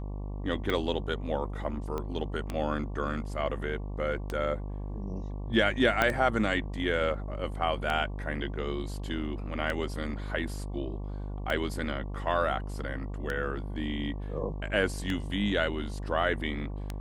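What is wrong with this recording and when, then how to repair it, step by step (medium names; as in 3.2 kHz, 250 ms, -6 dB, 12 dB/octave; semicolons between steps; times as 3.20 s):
buzz 50 Hz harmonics 23 -36 dBFS
tick 33 1/3 rpm -18 dBFS
1.98 s: pop -21 dBFS
6.02 s: pop -10 dBFS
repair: de-click; de-hum 50 Hz, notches 23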